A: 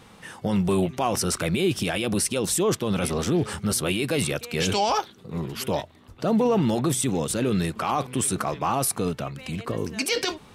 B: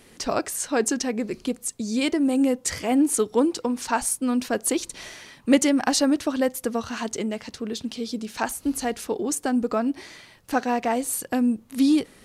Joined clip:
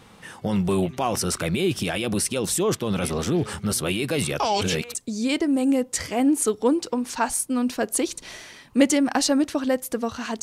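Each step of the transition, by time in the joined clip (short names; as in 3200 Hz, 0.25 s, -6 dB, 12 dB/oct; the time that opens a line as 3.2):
A
4.4–4.95 reverse
4.95 switch to B from 1.67 s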